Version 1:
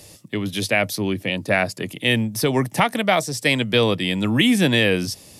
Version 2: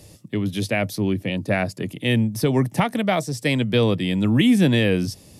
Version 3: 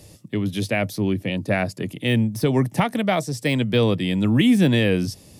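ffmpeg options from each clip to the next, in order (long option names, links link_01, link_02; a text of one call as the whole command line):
ffmpeg -i in.wav -af "lowshelf=frequency=440:gain=10,volume=-6dB" out.wav
ffmpeg -i in.wav -af "deesser=0.55" out.wav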